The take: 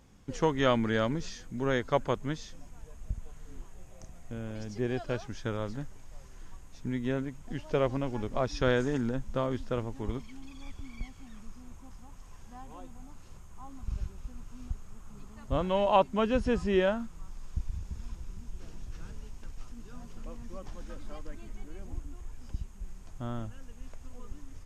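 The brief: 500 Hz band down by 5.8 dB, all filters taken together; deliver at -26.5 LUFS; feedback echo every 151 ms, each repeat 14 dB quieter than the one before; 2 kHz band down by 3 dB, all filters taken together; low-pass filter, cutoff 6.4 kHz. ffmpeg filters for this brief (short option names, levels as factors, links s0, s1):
-af "lowpass=6400,equalizer=f=500:t=o:g=-7,equalizer=f=2000:t=o:g=-3.5,aecho=1:1:151|302:0.2|0.0399,volume=2.99"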